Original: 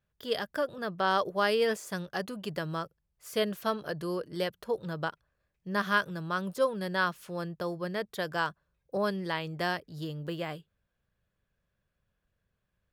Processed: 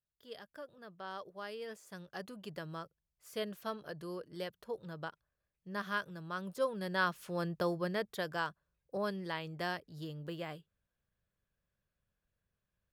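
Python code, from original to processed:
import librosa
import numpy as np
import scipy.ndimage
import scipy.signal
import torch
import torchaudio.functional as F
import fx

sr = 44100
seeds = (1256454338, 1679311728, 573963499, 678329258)

y = fx.gain(x, sr, db=fx.line((1.64, -17.5), (2.24, -9.5), (6.21, -9.5), (7.62, 1.0), (8.48, -6.5)))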